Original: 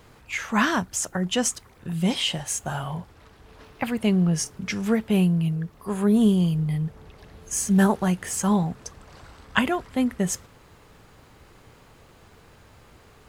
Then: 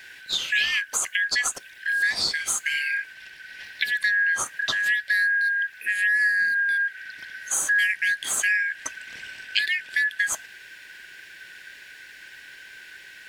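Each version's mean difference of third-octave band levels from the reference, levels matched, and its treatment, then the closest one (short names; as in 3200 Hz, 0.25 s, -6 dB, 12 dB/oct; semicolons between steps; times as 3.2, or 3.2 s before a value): 13.0 dB: four-band scrambler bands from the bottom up 4123; compressor 3:1, threshold -30 dBFS, peak gain reduction 12 dB; gain +7 dB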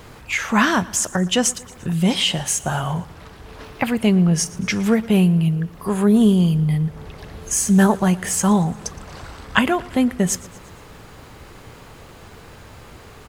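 3.0 dB: in parallel at +2 dB: compressor, threshold -33 dBFS, peak gain reduction 17 dB; on the sum: feedback echo 0.116 s, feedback 55%, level -21 dB; gain +3 dB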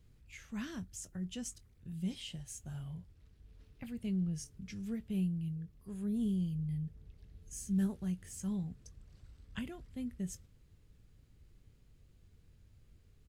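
6.0 dB: passive tone stack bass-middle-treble 10-0-1; doubler 21 ms -13.5 dB; gain +1.5 dB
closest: second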